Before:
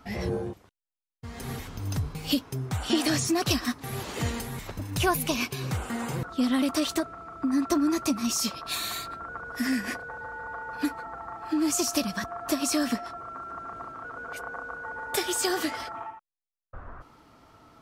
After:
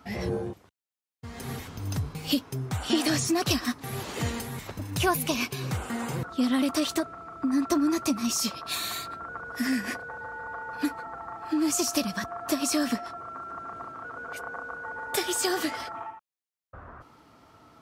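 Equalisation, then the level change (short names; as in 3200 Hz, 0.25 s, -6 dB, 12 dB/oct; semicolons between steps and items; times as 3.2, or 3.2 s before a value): HPF 64 Hz; 0.0 dB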